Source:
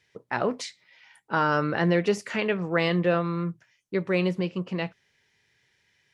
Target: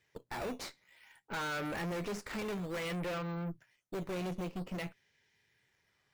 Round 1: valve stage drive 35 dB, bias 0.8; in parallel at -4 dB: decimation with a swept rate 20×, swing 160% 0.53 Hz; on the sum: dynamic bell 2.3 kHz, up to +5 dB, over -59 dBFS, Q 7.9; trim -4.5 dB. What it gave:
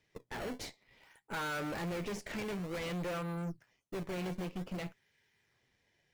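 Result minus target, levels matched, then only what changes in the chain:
decimation with a swept rate: distortion +6 dB
change: decimation with a swept rate 8×, swing 160% 0.53 Hz

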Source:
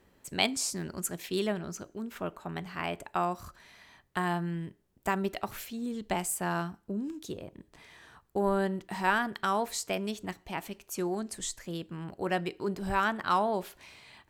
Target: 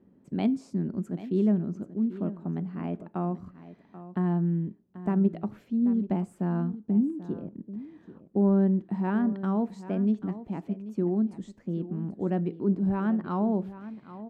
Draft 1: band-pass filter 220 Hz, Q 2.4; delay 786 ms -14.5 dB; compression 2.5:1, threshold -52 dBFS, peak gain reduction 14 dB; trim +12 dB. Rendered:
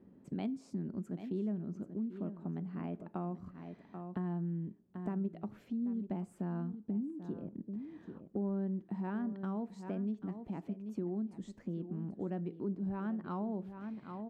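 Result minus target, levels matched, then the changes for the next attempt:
compression: peak gain reduction +14 dB
remove: compression 2.5:1, threshold -52 dBFS, peak gain reduction 14 dB

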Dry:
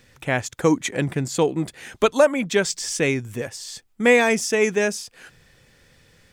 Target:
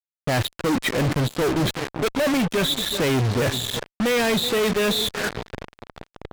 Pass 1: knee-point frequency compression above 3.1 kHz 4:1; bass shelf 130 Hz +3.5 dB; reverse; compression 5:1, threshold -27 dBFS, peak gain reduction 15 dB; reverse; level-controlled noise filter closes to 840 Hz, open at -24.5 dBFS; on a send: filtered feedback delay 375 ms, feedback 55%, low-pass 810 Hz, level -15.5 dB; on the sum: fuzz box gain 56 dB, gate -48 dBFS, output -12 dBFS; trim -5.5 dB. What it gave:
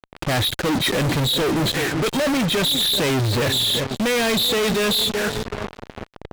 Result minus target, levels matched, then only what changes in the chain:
compression: peak gain reduction -7.5 dB
change: compression 5:1, threshold -36.5 dBFS, peak gain reduction 23 dB

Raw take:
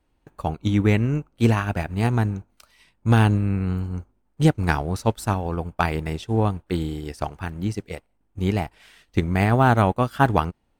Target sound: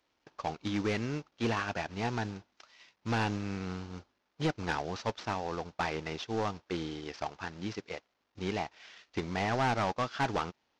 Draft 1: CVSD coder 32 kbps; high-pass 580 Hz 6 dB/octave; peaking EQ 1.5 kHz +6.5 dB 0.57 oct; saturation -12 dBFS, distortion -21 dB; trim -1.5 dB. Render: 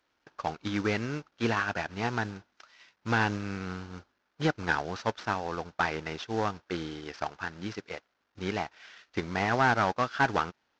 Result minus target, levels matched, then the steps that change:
saturation: distortion -11 dB; 2 kHz band +3.0 dB
change: saturation -22 dBFS, distortion -11 dB; remove: peaking EQ 1.5 kHz +6.5 dB 0.57 oct

